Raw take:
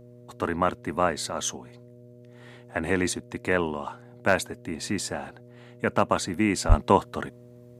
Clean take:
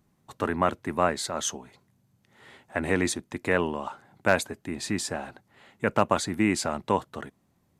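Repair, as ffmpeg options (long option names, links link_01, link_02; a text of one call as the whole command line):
ffmpeg -i in.wav -filter_complex "[0:a]bandreject=frequency=121.5:width_type=h:width=4,bandreject=frequency=243:width_type=h:width=4,bandreject=frequency=364.5:width_type=h:width=4,bandreject=frequency=486:width_type=h:width=4,bandreject=frequency=607.5:width_type=h:width=4,asplit=3[link_01][link_02][link_03];[link_01]afade=type=out:start_time=6.68:duration=0.02[link_04];[link_02]highpass=frequency=140:width=0.5412,highpass=frequency=140:width=1.3066,afade=type=in:start_time=6.68:duration=0.02,afade=type=out:start_time=6.8:duration=0.02[link_05];[link_03]afade=type=in:start_time=6.8:duration=0.02[link_06];[link_04][link_05][link_06]amix=inputs=3:normalize=0,asetnsamples=nb_out_samples=441:pad=0,asendcmd='6.71 volume volume -5.5dB',volume=0dB" out.wav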